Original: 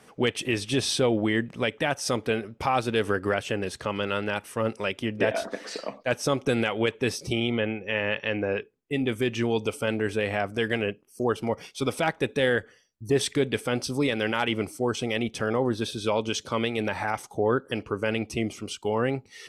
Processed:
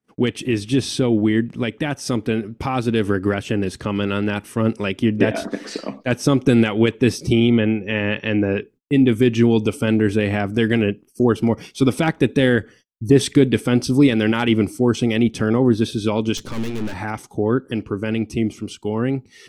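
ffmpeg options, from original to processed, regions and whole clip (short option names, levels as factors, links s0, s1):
-filter_complex "[0:a]asettb=1/sr,asplit=3[s0][s1][s2];[s0]atrim=end=16.374[s3];[s1]atrim=start=16.37:end=16.94,asetpts=PTS-STARTPTS,afade=t=in:d=0.004:c=qsin,afade=t=out:st=0.566:d=0.004:c=qsin,bandreject=f=60:t=h:w=6,bandreject=f=120:t=h:w=6,bandreject=f=180:t=h:w=6,bandreject=f=240:t=h:w=6,bandreject=f=300:t=h:w=6,bandreject=f=360:t=h:w=6,acontrast=69,aeval=exprs='(tanh(39.8*val(0)+0.75)-tanh(0.75))/39.8':c=same[s4];[s2]atrim=start=16.936[s5];[s3][s4]acrossfade=d=0.004:c1=hsin:c2=qsin[s6];[s6][s5]acrossfade=d=0.004:c1=qsin:c2=hsin,agate=range=0.0224:threshold=0.00282:ratio=16:detection=peak,lowshelf=f=410:t=q:w=1.5:g=7.5,dynaudnorm=f=220:g=31:m=2.24"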